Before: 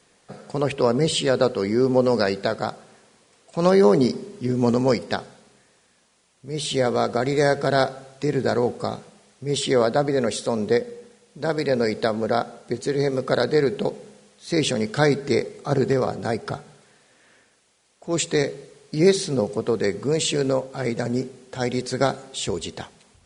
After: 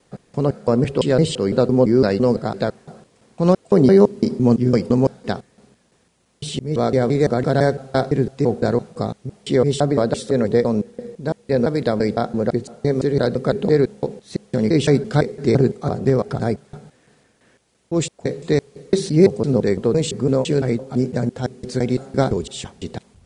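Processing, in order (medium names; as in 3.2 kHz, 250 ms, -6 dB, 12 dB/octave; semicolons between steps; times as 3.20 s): slices played last to first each 169 ms, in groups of 2; bass shelf 490 Hz +11.5 dB; trim -3 dB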